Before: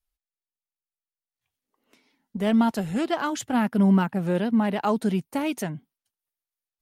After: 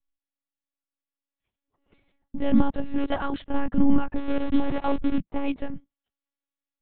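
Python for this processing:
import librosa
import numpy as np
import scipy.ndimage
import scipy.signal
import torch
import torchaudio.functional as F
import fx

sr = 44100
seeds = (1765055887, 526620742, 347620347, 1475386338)

y = fx.delta_hold(x, sr, step_db=-23.5, at=(4.16, 5.17), fade=0.02)
y = fx.tilt_shelf(y, sr, db=3.5, hz=720.0)
y = fx.lpc_monotone(y, sr, seeds[0], pitch_hz=280.0, order=10)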